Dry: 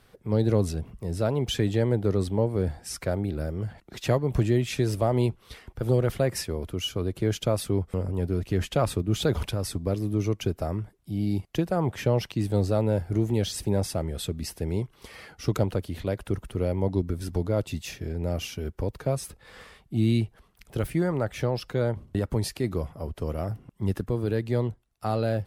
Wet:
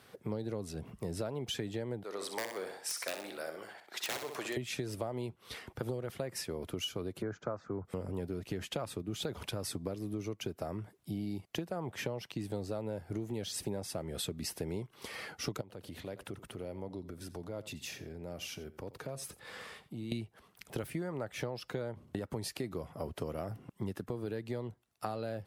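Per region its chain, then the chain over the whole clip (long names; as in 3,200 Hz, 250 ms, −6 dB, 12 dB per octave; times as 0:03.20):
0:02.03–0:04.57: high-pass filter 760 Hz + wrap-around overflow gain 25 dB + flutter between parallel walls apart 10.8 metres, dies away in 0.46 s
0:07.22–0:07.85: elliptic low-pass filter 6,900 Hz + high shelf with overshoot 2,100 Hz −13.5 dB, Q 3 + multiband upward and downward expander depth 40%
0:15.61–0:20.12: downward compressor 2.5 to 1, threshold −44 dBFS + single-tap delay 87 ms −16.5 dB
whole clip: high-pass filter 110 Hz 12 dB per octave; low-shelf EQ 240 Hz −4 dB; downward compressor 10 to 1, threshold −36 dBFS; level +2 dB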